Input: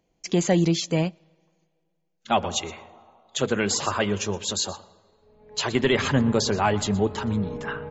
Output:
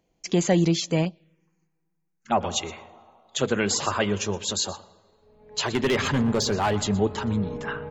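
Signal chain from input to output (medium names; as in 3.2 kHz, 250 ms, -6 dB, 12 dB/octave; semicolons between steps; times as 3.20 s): 1.05–2.41 s: touch-sensitive phaser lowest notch 580 Hz, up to 3.3 kHz, full sweep at -23 dBFS; 5.62–6.79 s: hard clipper -17.5 dBFS, distortion -16 dB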